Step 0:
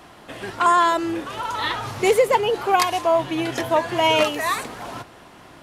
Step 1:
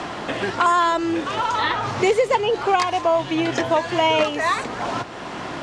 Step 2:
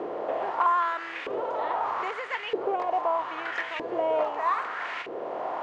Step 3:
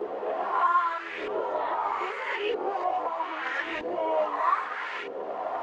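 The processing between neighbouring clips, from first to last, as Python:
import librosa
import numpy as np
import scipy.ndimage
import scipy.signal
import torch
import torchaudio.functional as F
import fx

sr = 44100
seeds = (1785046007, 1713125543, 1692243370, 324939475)

y1 = scipy.signal.sosfilt(scipy.signal.butter(4, 7600.0, 'lowpass', fs=sr, output='sos'), x)
y1 = fx.band_squash(y1, sr, depth_pct=70)
y2 = fx.bin_compress(y1, sr, power=0.6)
y2 = fx.filter_lfo_bandpass(y2, sr, shape='saw_up', hz=0.79, low_hz=400.0, high_hz=2400.0, q=2.6)
y2 = y2 * 10.0 ** (-5.5 / 20.0)
y3 = fx.spec_swells(y2, sr, rise_s=0.78)
y3 = fx.chorus_voices(y3, sr, voices=6, hz=0.6, base_ms=12, depth_ms=2.7, mix_pct=65)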